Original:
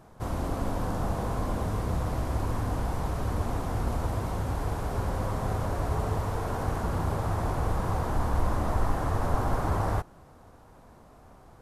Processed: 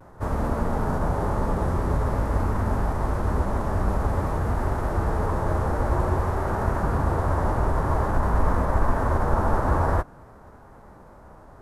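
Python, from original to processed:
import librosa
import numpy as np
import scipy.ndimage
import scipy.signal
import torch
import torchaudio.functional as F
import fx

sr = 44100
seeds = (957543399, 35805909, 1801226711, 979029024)

y = fx.high_shelf_res(x, sr, hz=2200.0, db=-6.5, q=1.5)
y = fx.pitch_keep_formants(y, sr, semitones=-3.0)
y = fx.vibrato(y, sr, rate_hz=0.5, depth_cents=29.0)
y = F.gain(torch.from_numpy(y), 6.0).numpy()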